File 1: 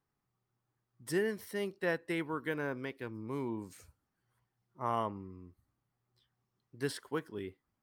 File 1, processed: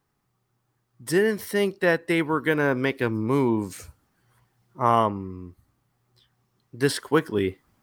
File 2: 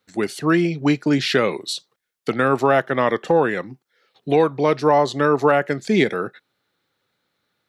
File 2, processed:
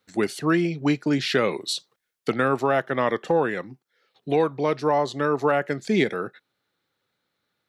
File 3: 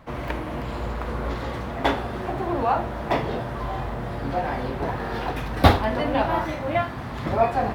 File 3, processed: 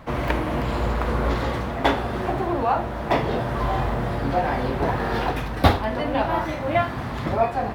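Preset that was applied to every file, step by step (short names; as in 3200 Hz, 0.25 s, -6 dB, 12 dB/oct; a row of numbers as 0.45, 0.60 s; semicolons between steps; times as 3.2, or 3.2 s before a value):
vocal rider within 4 dB 0.5 s; match loudness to -24 LUFS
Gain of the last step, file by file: +14.0, -4.0, +1.5 dB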